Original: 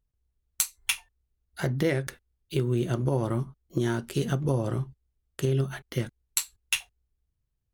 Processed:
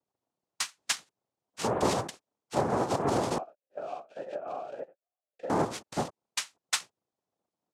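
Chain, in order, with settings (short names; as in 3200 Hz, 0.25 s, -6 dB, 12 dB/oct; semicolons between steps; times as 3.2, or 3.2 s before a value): noise vocoder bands 2; 3.38–5.5 vowel sweep a-e 1.7 Hz; gain -1.5 dB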